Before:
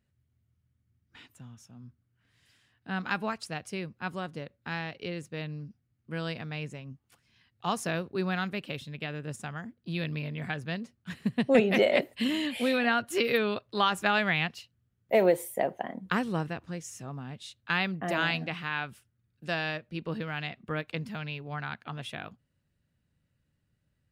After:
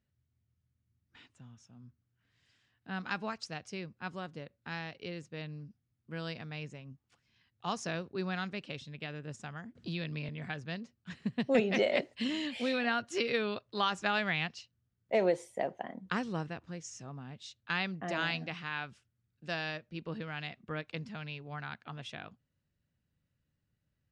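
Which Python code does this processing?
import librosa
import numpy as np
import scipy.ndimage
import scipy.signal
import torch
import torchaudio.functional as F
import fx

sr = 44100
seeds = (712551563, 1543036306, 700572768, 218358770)

y = fx.band_squash(x, sr, depth_pct=70, at=(9.75, 10.29))
y = scipy.signal.sosfilt(scipy.signal.butter(4, 7400.0, 'lowpass', fs=sr, output='sos'), y)
y = fx.dynamic_eq(y, sr, hz=5700.0, q=1.8, threshold_db=-55.0, ratio=4.0, max_db=7)
y = y * librosa.db_to_amplitude(-5.5)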